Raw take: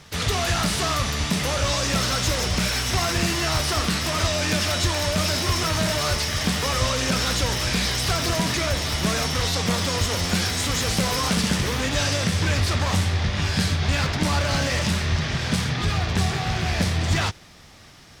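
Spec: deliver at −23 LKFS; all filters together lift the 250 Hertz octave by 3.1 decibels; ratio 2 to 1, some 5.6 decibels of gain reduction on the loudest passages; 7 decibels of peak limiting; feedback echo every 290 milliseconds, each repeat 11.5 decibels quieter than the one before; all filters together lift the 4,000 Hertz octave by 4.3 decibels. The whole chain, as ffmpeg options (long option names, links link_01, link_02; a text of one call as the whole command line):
ffmpeg -i in.wav -af "equalizer=frequency=250:width_type=o:gain=4.5,equalizer=frequency=4000:width_type=o:gain=5.5,acompressor=threshold=-26dB:ratio=2,alimiter=limit=-17.5dB:level=0:latency=1,aecho=1:1:290|580|870:0.266|0.0718|0.0194,volume=3dB" out.wav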